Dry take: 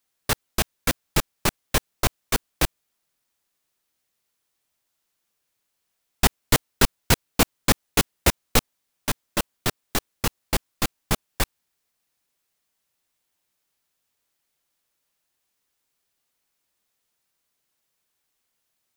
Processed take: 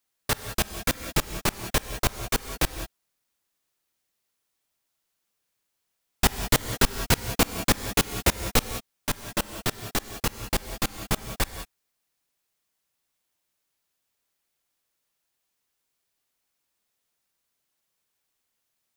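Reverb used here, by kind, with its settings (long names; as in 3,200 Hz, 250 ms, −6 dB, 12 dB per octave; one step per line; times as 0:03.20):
reverb whose tail is shaped and stops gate 220 ms rising, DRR 9.5 dB
level −2.5 dB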